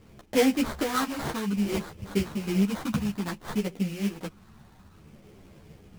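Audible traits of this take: phasing stages 4, 0.59 Hz, lowest notch 450–1700 Hz; aliases and images of a low sample rate 2700 Hz, jitter 20%; a shimmering, thickened sound

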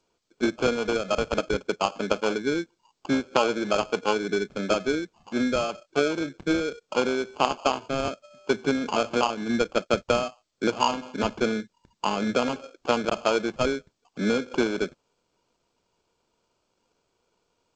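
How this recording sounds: aliases and images of a low sample rate 1900 Hz, jitter 0%; G.722

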